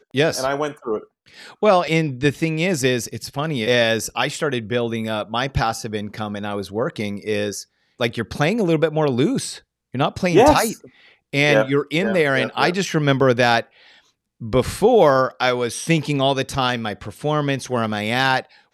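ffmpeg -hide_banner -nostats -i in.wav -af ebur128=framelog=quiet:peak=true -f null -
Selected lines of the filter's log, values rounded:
Integrated loudness:
  I:         -19.9 LUFS
  Threshold: -30.3 LUFS
Loudness range:
  LRA:         5.5 LU
  Threshold: -40.2 LUFS
  LRA low:   -23.9 LUFS
  LRA high:  -18.4 LUFS
True peak:
  Peak:       -1.7 dBFS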